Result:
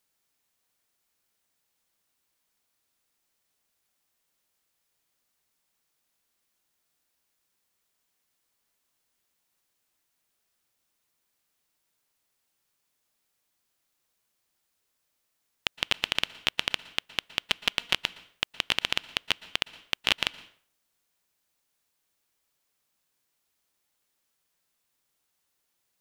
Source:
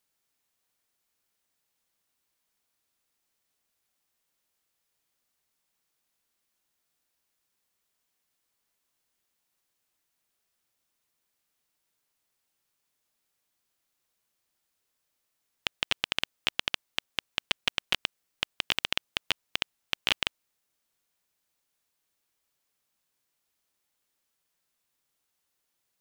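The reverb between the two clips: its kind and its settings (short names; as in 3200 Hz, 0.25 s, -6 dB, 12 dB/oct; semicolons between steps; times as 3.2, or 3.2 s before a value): plate-style reverb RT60 0.51 s, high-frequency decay 0.8×, pre-delay 0.105 s, DRR 18 dB; gain +2 dB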